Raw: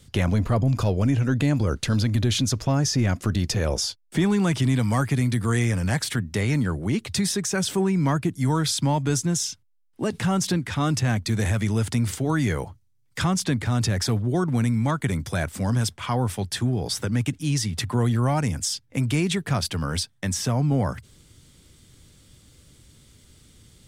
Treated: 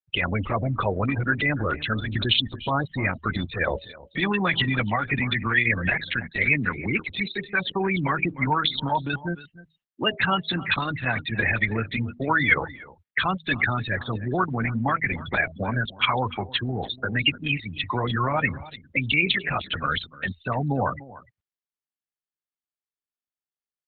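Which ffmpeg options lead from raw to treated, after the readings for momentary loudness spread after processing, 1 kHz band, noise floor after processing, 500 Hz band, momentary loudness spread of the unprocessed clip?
7 LU, +4.5 dB, under -85 dBFS, -1.5 dB, 5 LU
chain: -filter_complex "[0:a]bandreject=f=79.98:t=h:w=4,bandreject=f=159.96:t=h:w=4,bandreject=f=239.94:t=h:w=4,bandreject=f=319.92:t=h:w=4,bandreject=f=399.9:t=h:w=4,bandreject=f=479.88:t=h:w=4,bandreject=f=559.86:t=h:w=4,bandreject=f=639.84:t=h:w=4,afftfilt=real='re*gte(hypot(re,im),0.0501)':imag='im*gte(hypot(re,im),0.0501)':win_size=1024:overlap=0.75,tiltshelf=f=680:g=-10,asplit=2[a][b];[b]acompressor=threshold=-30dB:ratio=8,volume=0.5dB[c];[a][c]amix=inputs=2:normalize=0,alimiter=limit=-13dB:level=0:latency=1:release=56,lowpass=f=2.8k:t=q:w=2.1,aecho=1:1:297:0.126" -ar 48000 -c:a libopus -b:a 8k

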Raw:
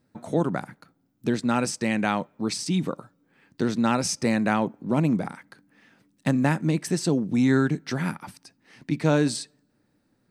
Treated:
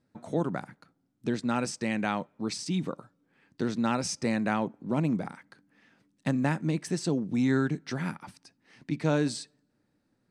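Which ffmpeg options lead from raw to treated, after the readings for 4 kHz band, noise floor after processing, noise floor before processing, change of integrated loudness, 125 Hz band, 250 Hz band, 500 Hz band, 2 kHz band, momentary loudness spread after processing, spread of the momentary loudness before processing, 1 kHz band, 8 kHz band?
-5.0 dB, -75 dBFS, -70 dBFS, -5.0 dB, -5.0 dB, -5.0 dB, -5.0 dB, -5.0 dB, 12 LU, 11 LU, -5.0 dB, -6.0 dB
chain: -af "lowpass=9.2k,volume=-5dB"

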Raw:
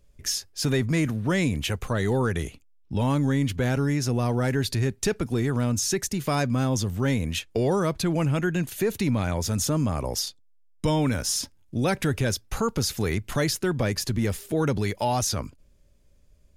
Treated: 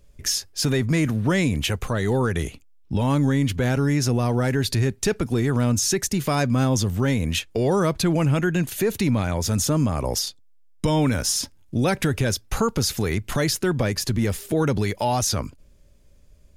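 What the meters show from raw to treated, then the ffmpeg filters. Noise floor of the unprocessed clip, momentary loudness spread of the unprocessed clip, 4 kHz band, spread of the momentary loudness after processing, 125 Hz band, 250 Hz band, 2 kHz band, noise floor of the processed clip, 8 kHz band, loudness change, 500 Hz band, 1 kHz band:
-58 dBFS, 4 LU, +3.5 dB, 4 LU, +3.0 dB, +3.0 dB, +2.5 dB, -52 dBFS, +3.5 dB, +3.0 dB, +2.5 dB, +2.5 dB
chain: -af "alimiter=limit=-18.5dB:level=0:latency=1:release=215,volume=5.5dB"

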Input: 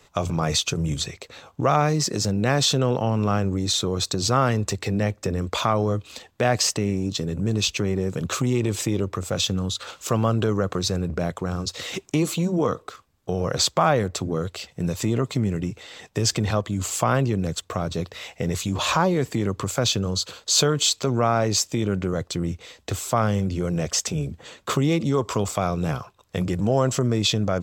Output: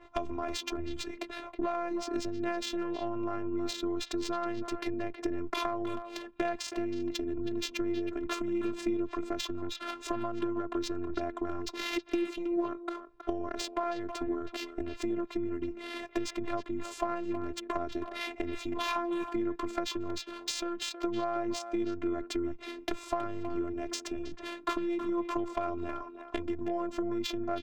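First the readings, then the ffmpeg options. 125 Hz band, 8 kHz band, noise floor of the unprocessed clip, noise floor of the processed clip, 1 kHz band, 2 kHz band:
-25.5 dB, -19.0 dB, -57 dBFS, -49 dBFS, -10.0 dB, -9.5 dB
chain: -filter_complex "[0:a]highpass=45,acompressor=threshold=-33dB:ratio=10,afftfilt=real='hypot(re,im)*cos(PI*b)':imag='0':win_size=512:overlap=0.75,asoftclip=type=hard:threshold=-23.5dB,adynamicsmooth=sensitivity=5.5:basefreq=1.7k,asplit=2[a][b];[b]adelay=320,highpass=300,lowpass=3.4k,asoftclip=type=hard:threshold=-34dB,volume=-9dB[c];[a][c]amix=inputs=2:normalize=0,adynamicequalizer=threshold=0.00126:dfrequency=3300:dqfactor=0.7:tfrequency=3300:tqfactor=0.7:attack=5:release=100:ratio=0.375:range=1.5:mode=cutabove:tftype=highshelf,volume=8.5dB"

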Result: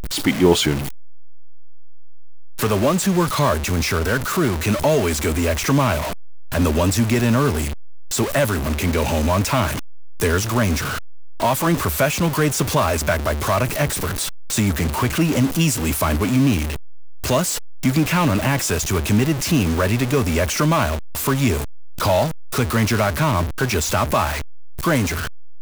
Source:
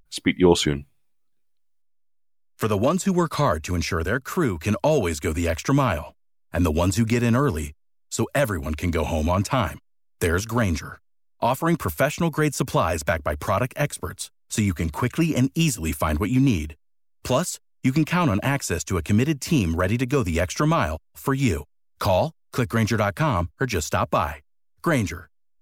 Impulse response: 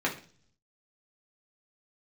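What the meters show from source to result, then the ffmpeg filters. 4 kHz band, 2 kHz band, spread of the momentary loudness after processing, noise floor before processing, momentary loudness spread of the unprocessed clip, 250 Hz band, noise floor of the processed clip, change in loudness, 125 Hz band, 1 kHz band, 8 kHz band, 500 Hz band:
+6.5 dB, +4.5 dB, 7 LU, -63 dBFS, 8 LU, +3.0 dB, -25 dBFS, +3.5 dB, +3.5 dB, +3.5 dB, +7.5 dB, +3.0 dB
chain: -filter_complex "[0:a]aeval=exprs='val(0)+0.5*0.075*sgn(val(0))':c=same,asplit=2[a][b];[b]acrusher=bits=4:mix=0:aa=0.000001,volume=-4dB[c];[a][c]amix=inputs=2:normalize=0,volume=-3.5dB"

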